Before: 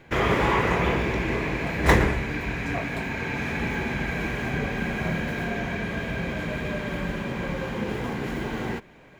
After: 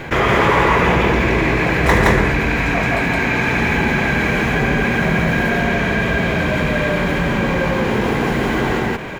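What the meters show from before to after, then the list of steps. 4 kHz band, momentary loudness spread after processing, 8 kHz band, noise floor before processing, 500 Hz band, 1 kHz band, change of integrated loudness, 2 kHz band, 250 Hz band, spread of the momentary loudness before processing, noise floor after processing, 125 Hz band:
+10.0 dB, 5 LU, +9.0 dB, -50 dBFS, +10.0 dB, +10.5 dB, +10.5 dB, +11.5 dB, +10.0 dB, 9 LU, -19 dBFS, +9.5 dB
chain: bell 1200 Hz +2.5 dB 2.1 oct; on a send: loudspeakers at several distances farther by 25 m -10 dB, 58 m 0 dB; on the sum: fast leveller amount 50%; gain +1.5 dB

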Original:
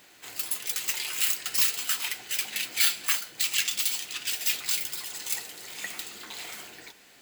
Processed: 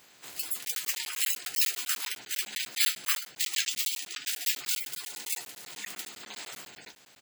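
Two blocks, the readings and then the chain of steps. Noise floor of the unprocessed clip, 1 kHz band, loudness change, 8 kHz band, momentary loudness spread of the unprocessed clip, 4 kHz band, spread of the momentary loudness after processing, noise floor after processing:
-55 dBFS, -3.5 dB, -3.0 dB, -2.5 dB, 15 LU, -2.5 dB, 15 LU, -58 dBFS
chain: bin magnitudes rounded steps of 30 dB; doubler 14 ms -10.5 dB; crackling interface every 0.10 s, samples 512, zero, from 0.65; gain -2 dB

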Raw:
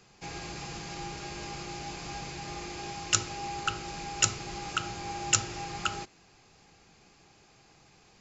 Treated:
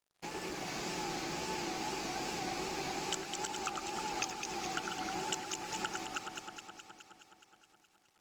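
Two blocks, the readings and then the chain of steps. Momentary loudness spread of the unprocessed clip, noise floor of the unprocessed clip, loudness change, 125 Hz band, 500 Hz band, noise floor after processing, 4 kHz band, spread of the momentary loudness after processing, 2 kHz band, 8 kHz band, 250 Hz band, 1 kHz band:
12 LU, -61 dBFS, -5.5 dB, -9.5 dB, +1.0 dB, -72 dBFS, -5.0 dB, 9 LU, -3.5 dB, n/a, 0.0 dB, -2.0 dB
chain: reverse delay 0.194 s, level -8.5 dB; resonant low shelf 160 Hz -11 dB, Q 1.5; compressor 10:1, threshold -38 dBFS, peak gain reduction 20.5 dB; wow and flutter 140 cents; crossover distortion -53 dBFS; on a send: echo with dull and thin repeats by turns 0.105 s, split 2000 Hz, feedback 82%, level -3 dB; on the sum: gain +3 dB; Opus 24 kbps 48000 Hz

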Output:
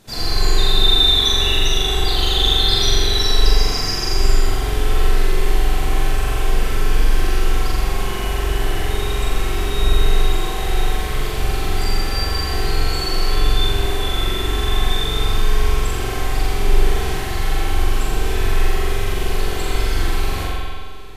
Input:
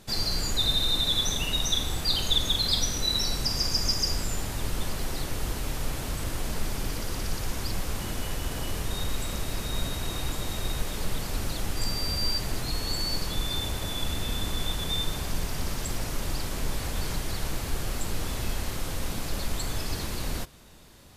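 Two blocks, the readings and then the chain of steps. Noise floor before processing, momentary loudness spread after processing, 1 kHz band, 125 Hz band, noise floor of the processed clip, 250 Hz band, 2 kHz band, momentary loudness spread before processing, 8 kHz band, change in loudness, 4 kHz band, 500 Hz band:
-34 dBFS, 8 LU, +12.5 dB, +10.0 dB, -23 dBFS, +7.5 dB, +11.5 dB, 9 LU, +3.5 dB, +9.5 dB, +8.5 dB, +13.0 dB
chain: on a send: flutter echo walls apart 7.3 m, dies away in 0.98 s; on the sum: spring tank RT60 1.8 s, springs 45 ms, chirp 60 ms, DRR -7.5 dB

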